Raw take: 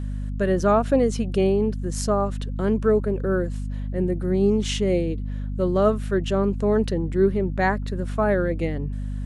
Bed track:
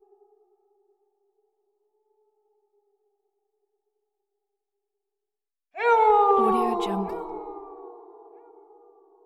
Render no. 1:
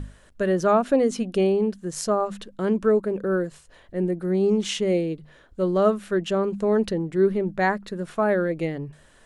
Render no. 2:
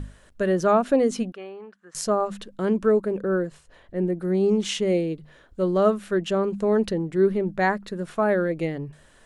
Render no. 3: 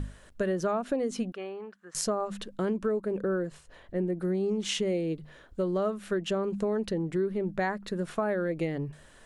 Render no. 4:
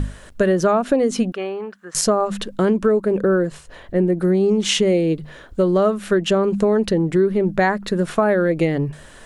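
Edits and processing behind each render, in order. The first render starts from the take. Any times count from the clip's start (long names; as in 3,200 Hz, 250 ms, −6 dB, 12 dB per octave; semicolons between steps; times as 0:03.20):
mains-hum notches 50/100/150/200/250 Hz
0:01.32–0:01.95: resonant band-pass 1,400 Hz, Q 2.4; 0:03.21–0:04.17: high-shelf EQ 4,300 Hz −6.5 dB
downward compressor 6 to 1, threshold −26 dBFS, peak gain reduction 11.5 dB
level +12 dB; brickwall limiter −3 dBFS, peak gain reduction 2 dB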